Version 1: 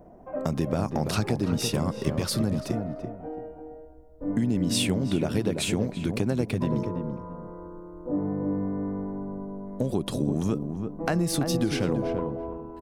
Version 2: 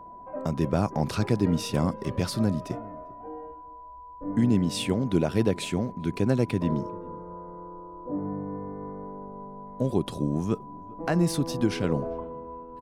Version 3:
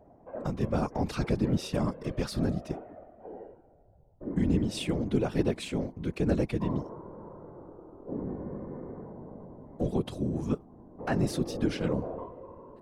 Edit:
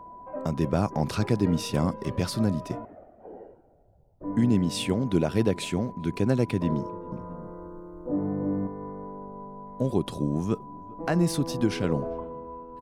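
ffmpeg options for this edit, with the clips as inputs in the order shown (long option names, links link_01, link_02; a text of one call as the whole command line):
ffmpeg -i take0.wav -i take1.wav -i take2.wav -filter_complex "[1:a]asplit=3[link_01][link_02][link_03];[link_01]atrim=end=2.852[link_04];[2:a]atrim=start=2.848:end=4.242[link_05];[link_02]atrim=start=4.238:end=7.122[link_06];[0:a]atrim=start=7.118:end=8.672[link_07];[link_03]atrim=start=8.668[link_08];[link_04][link_05]acrossfade=duration=0.004:curve1=hsin:curve2=hsin[link_09];[link_09][link_06]acrossfade=duration=0.004:curve1=hsin:curve2=hsin[link_10];[link_10][link_07]acrossfade=duration=0.004:curve1=hsin:curve2=hsin[link_11];[link_11][link_08]acrossfade=duration=0.004:curve1=hsin:curve2=hsin" out.wav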